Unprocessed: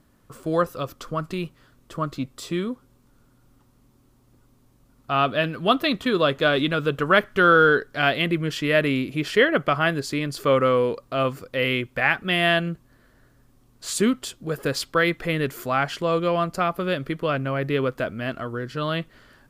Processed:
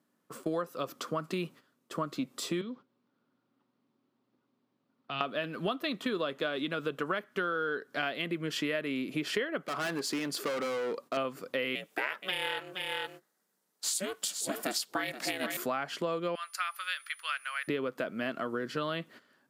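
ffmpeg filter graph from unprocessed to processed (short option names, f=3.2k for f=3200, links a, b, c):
-filter_complex "[0:a]asettb=1/sr,asplit=3[a][b][c];[a]atrim=end=2.614[d];[b]atrim=start=2.61:end=5.21,asetpts=PTS-STARTPTS,afade=t=in:d=0.004:c=qsin,afade=t=out:st=2.596:d=0.004:c=qsin,lowpass=f=4.5k:w=0.5412,lowpass=f=4.5k:w=1.3066,bandreject=f=50:t=h:w=6,bandreject=f=100:t=h:w=6,bandreject=f=150:t=h:w=6,acrossover=split=150|3000[e][f][g];[f]acompressor=threshold=-39dB:ratio=4:attack=3.2:release=140:knee=2.83:detection=peak[h];[e][h][g]amix=inputs=3:normalize=0[i];[c]atrim=start=5.206[j];[d][i]acrossfade=d=0.004:c1=hsin:c2=qsin[k];[k][j]acrossfade=d=0.004:c1=qsin:c2=hsin,asettb=1/sr,asplit=3[l][m][n];[l]atrim=end=9.604[o];[m]atrim=start=9.6:end=11.17,asetpts=PTS-STARTPTS,afade=t=in:d=0.004:c=qsin,afade=t=out:st=1.566:d=0.004:c=qsin,equalizer=f=93:w=1.1:g=-10.5,volume=26dB,asoftclip=hard,volume=-26dB[p];[n]atrim=start=11.166[q];[o][p]acrossfade=d=0.004:c1=hsin:c2=qsin[r];[r][q]acrossfade=d=0.004:c1=qsin:c2=hsin,asettb=1/sr,asplit=3[s][t][u];[s]atrim=end=11.754[v];[t]atrim=start=11.75:end=15.57,asetpts=PTS-STARTPTS,afade=t=in:d=0.004:c=qsin,afade=t=out:st=3.816:d=0.004:c=qsin,bass=f=250:g=-14,treble=f=4k:g=9,aeval=exprs='val(0)*sin(2*PI*190*n/s)':c=same,aecho=1:1:473:0.282,atrim=end_sample=168462[w];[u]atrim=start=15.566[x];[v][w]acrossfade=d=0.004:c1=hsin:c2=qsin[y];[y][x]acrossfade=d=0.004:c1=qsin:c2=hsin,asettb=1/sr,asplit=3[z][aa][ab];[z]atrim=end=16.354[ac];[aa]atrim=start=16.35:end=17.68,asetpts=PTS-STARTPTS,afade=t=in:d=0.004:c=qsin,afade=t=out:st=1.326:d=0.004:c=qsin,highpass=f=1.4k:w=0.5412,highpass=f=1.4k:w=1.3066,aeval=exprs='val(0)+0.002*sin(2*PI*9900*n/s)':c=same[ad];[ab]atrim=start=17.676[ae];[ac][ad]acrossfade=d=0.004:c1=hsin:c2=qsin[af];[af][ae]acrossfade=d=0.004:c1=qsin:c2=hsin,agate=range=-13dB:threshold=-45dB:ratio=16:detection=peak,highpass=f=180:w=0.5412,highpass=f=180:w=1.3066,acompressor=threshold=-29dB:ratio=12"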